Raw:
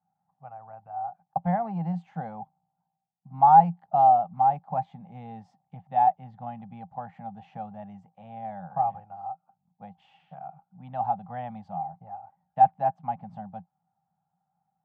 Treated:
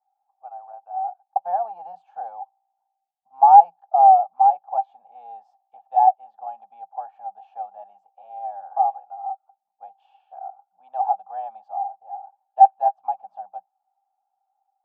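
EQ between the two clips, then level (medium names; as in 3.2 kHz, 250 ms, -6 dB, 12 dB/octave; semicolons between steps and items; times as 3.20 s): high-pass 450 Hz 24 dB/octave; Butterworth band-stop 2 kHz, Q 4.1; peaking EQ 770 Hz +14.5 dB 0.77 oct; -8.0 dB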